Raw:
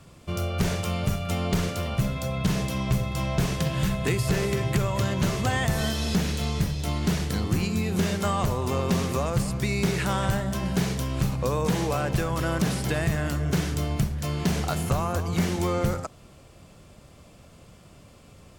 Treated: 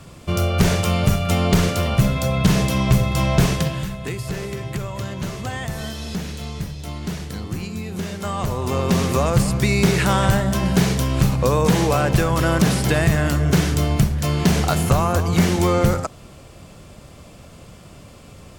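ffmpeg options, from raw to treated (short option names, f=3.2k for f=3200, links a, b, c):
-af "volume=19.5dB,afade=t=out:st=3.44:d=0.42:silence=0.266073,afade=t=in:st=8.15:d=1.14:silence=0.281838"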